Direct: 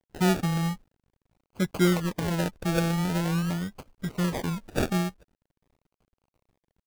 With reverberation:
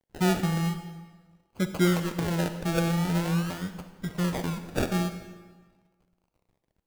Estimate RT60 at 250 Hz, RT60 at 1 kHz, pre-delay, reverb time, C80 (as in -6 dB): 1.5 s, 1.4 s, 39 ms, 1.4 s, 10.5 dB